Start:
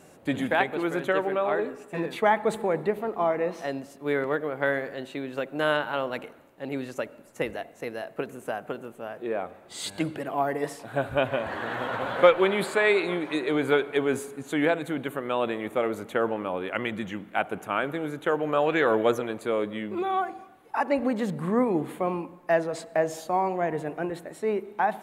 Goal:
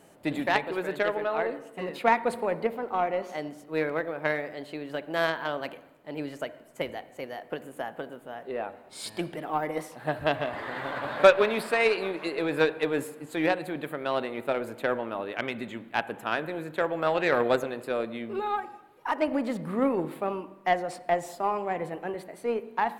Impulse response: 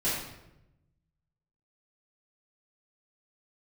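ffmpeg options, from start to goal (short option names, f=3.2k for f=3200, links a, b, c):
-filter_complex "[0:a]asetrate=48000,aresample=44100,asplit=2[a][b];[1:a]atrim=start_sample=2205,lowpass=3.8k[c];[b][c]afir=irnorm=-1:irlink=0,volume=-23dB[d];[a][d]amix=inputs=2:normalize=0,aeval=exprs='0.668*(cos(1*acos(clip(val(0)/0.668,-1,1)))-cos(1*PI/2))+0.0335*(cos(7*acos(clip(val(0)/0.668,-1,1)))-cos(7*PI/2))+0.00531*(cos(8*acos(clip(val(0)/0.668,-1,1)))-cos(8*PI/2))':c=same"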